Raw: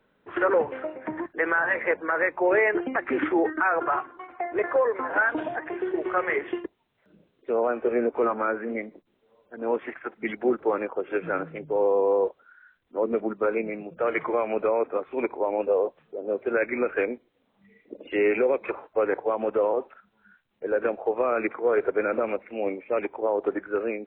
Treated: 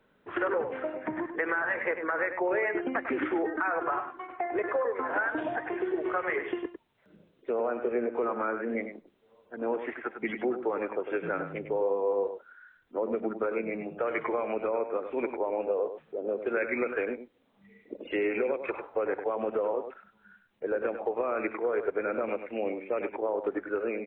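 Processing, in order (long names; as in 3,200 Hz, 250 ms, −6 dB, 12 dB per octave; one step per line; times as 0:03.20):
downward compressor 3 to 1, threshold −28 dBFS, peak gain reduction 8.5 dB
0:16.46–0:16.94: high-shelf EQ 3,000 Hz +8.5 dB
single-tap delay 100 ms −9 dB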